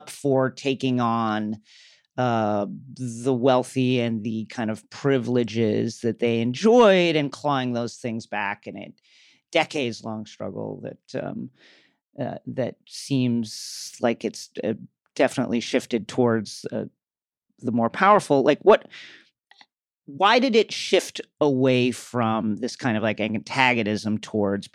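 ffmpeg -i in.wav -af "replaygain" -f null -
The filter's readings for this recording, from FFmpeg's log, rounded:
track_gain = +2.3 dB
track_peak = 0.489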